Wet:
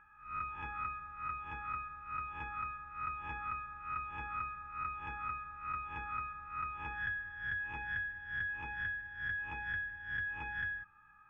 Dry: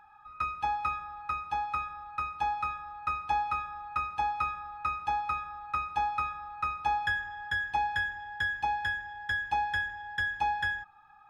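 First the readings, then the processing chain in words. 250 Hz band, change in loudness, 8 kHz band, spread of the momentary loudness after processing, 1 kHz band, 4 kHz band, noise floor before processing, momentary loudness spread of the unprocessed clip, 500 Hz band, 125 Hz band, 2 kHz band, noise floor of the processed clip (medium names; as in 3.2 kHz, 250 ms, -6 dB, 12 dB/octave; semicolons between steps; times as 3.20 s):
-3.0 dB, -7.5 dB, no reading, 4 LU, -11.0 dB, -14.5 dB, -56 dBFS, 6 LU, -8.5 dB, -3.5 dB, -5.0 dB, -61 dBFS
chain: reverse spectral sustain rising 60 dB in 0.44 s; distance through air 420 m; static phaser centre 1.8 kHz, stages 4; compression 3:1, threshold -39 dBFS, peak gain reduction 7.5 dB; treble shelf 2.5 kHz +10 dB; trim -1 dB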